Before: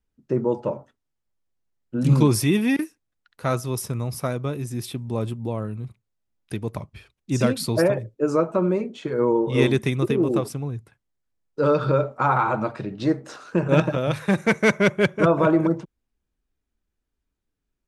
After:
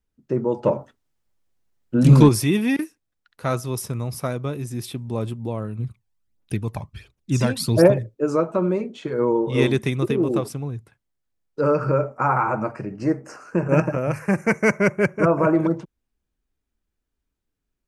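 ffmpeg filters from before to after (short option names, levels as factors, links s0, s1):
-filter_complex "[0:a]asettb=1/sr,asplit=3[s0][s1][s2];[s0]atrim=end=0.634[s3];[s1]atrim=start=0.63:end=2.29,asetpts=PTS-STARTPTS,afade=t=in:d=0.004:c=qsin,afade=t=out:st=1.656:d=0.004:c=qsin,acontrast=74[s4];[s2]atrim=start=2.286[s5];[s3][s4]acrossfade=d=0.004:c1=hsin:c2=qsin[s6];[s6][s5]acrossfade=d=0.004:c1=qsin:c2=hsin,asplit=3[s7][s8][s9];[s7]afade=t=out:st=5.78:d=0.02[s10];[s8]aphaser=in_gain=1:out_gain=1:delay=1.3:decay=0.57:speed=1.4:type=triangular,afade=t=in:st=5.78:d=0.02,afade=t=out:st=8.02:d=0.02[s11];[s9]afade=t=in:st=8.02:d=0.02[s12];[s10][s11][s12]amix=inputs=3:normalize=0,asettb=1/sr,asplit=3[s13][s14][s15];[s13]atrim=end=11.614[s16];[s14]atrim=start=11.61:end=15.55,asetpts=PTS-STARTPTS,afade=t=in:d=0.004:c=qsin,afade=t=out:st=3.936:d=0.004:c=qsin,asuperstop=centerf=3600:order=4:qfactor=1.5[s17];[s15]atrim=start=15.546[s18];[s16][s17]acrossfade=d=0.004:c1=hsin:c2=qsin[s19];[s19][s18]acrossfade=d=0.004:c1=qsin:c2=hsin"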